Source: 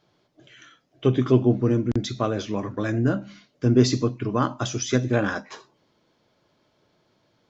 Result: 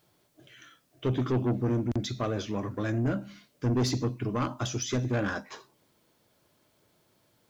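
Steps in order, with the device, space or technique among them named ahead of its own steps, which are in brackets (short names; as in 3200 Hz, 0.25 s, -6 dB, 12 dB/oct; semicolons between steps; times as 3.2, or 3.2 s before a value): open-reel tape (soft clip -19 dBFS, distortion -9 dB; bell 80 Hz +4 dB 1 oct; white noise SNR 42 dB); gain -3.5 dB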